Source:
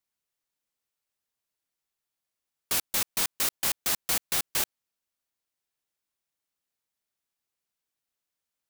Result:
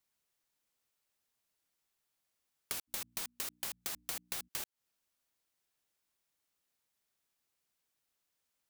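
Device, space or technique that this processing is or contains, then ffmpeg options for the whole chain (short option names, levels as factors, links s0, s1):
serial compression, leveller first: -filter_complex "[0:a]asplit=3[s0][s1][s2];[s0]afade=t=out:st=2.87:d=0.02[s3];[s1]bandreject=f=60:t=h:w=6,bandreject=f=120:t=h:w=6,bandreject=f=180:t=h:w=6,bandreject=f=240:t=h:w=6,bandreject=f=300:t=h:w=6,afade=t=in:st=2.87:d=0.02,afade=t=out:st=4.47:d=0.02[s4];[s2]afade=t=in:st=4.47:d=0.02[s5];[s3][s4][s5]amix=inputs=3:normalize=0,acompressor=threshold=0.0251:ratio=2,acompressor=threshold=0.01:ratio=8,volume=1.41"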